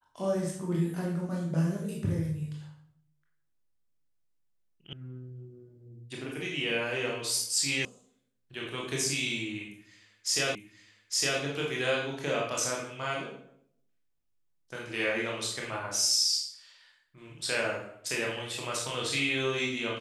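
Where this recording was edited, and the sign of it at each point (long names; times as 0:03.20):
0:04.93: cut off before it has died away
0:07.85: cut off before it has died away
0:10.55: the same again, the last 0.86 s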